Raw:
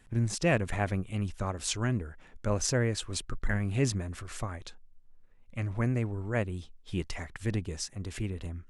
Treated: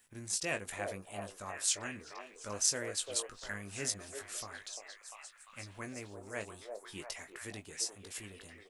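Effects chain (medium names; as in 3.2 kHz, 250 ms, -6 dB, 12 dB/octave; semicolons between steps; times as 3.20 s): RIAA curve recording; doubling 20 ms -7.5 dB; repeats whose band climbs or falls 347 ms, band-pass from 560 Hz, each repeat 0.7 oct, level -1 dB; trim -9 dB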